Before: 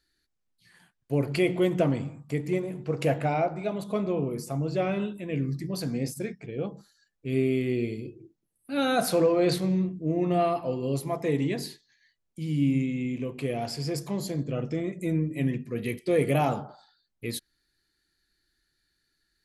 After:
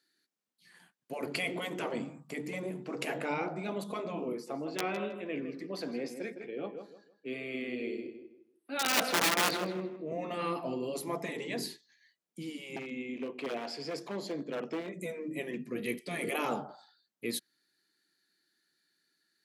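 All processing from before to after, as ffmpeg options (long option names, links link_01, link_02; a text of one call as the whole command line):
ffmpeg -i in.wav -filter_complex "[0:a]asettb=1/sr,asplit=3[link_01][link_02][link_03];[link_01]atrim=end=4.334[link_04];[link_02]atrim=start=4.33:end=10.12,asetpts=PTS-STARTPTS,afade=type=in:duration=0.004:curve=qsin,afade=type=out:start_time=5.786:duration=0.004:curve=qsin,acrossover=split=270 4500:gain=0.178 1 0.178[link_05][link_06][link_07];[link_05][link_06][link_07]amix=inputs=3:normalize=0,aeval=exprs='(mod(8.91*val(0)+1,2)-1)/8.91':channel_layout=same,asplit=2[link_08][link_09];[link_09]adelay=159,lowpass=frequency=3000:poles=1,volume=-9dB,asplit=2[link_10][link_11];[link_11]adelay=159,lowpass=frequency=3000:poles=1,volume=0.29,asplit=2[link_12][link_13];[link_13]adelay=159,lowpass=frequency=3000:poles=1,volume=0.29[link_14];[link_08][link_10][link_12][link_14]amix=inputs=4:normalize=0,atrim=end_sample=255339[link_15];[link_03]atrim=start=10.116[link_16];[link_04][link_15]acrossfade=duration=0.004:curve1=hsin:curve2=qsin[link_17];[link_17][link_16]acrossfade=duration=0.004:curve1=qsin:curve2=hsin,asettb=1/sr,asplit=3[link_18][link_19][link_20];[link_18]atrim=end=12.764[link_21];[link_19]atrim=start=12.76:end=14.94,asetpts=PTS-STARTPTS,afade=type=in:duration=0.004:curve=qsin,afade=type=out:start_time=2.176:duration=0.004:curve=qsin,acrossover=split=250 5300:gain=0.2 1 0.141[link_22][link_23][link_24];[link_22][link_23][link_24]amix=inputs=3:normalize=0,aeval=exprs='0.0447*(abs(mod(val(0)/0.0447+3,4)-2)-1)':channel_layout=same[link_25];[link_20]atrim=start=14.936[link_26];[link_21][link_25]acrossfade=duration=0.004:curve1=hsin:curve2=qsin[link_27];[link_27][link_26]acrossfade=duration=0.004:curve1=qsin:curve2=hsin,afftfilt=real='re*lt(hypot(re,im),0.251)':imag='im*lt(hypot(re,im),0.251)':win_size=1024:overlap=0.75,highpass=frequency=180:width=0.5412,highpass=frequency=180:width=1.3066,volume=-1dB" out.wav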